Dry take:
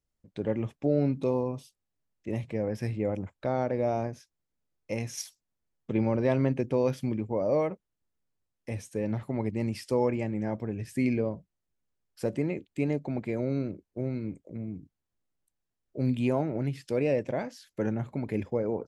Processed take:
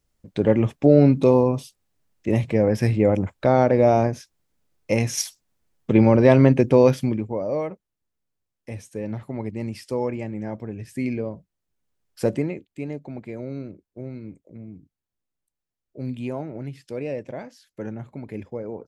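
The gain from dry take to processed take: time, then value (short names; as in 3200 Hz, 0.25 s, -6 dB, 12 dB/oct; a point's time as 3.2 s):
6.84 s +11.5 dB
7.47 s +0.5 dB
11.31 s +0.5 dB
12.29 s +8.5 dB
12.67 s -3 dB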